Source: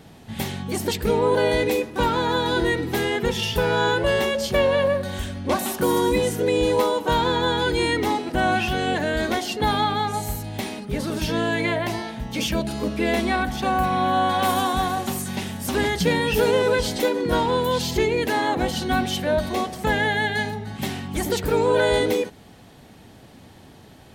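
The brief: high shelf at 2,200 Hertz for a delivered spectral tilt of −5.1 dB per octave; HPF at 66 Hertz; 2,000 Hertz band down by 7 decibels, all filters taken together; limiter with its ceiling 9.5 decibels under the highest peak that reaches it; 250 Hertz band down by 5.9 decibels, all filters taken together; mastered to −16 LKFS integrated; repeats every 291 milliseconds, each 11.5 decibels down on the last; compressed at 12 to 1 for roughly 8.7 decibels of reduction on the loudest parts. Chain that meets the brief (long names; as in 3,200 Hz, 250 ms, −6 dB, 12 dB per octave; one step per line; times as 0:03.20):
high-pass filter 66 Hz
parametric band 250 Hz −8 dB
parametric band 2,000 Hz −5.5 dB
high-shelf EQ 2,200 Hz −7.5 dB
downward compressor 12 to 1, threshold −27 dBFS
brickwall limiter −27 dBFS
repeating echo 291 ms, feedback 27%, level −11.5 dB
level +19 dB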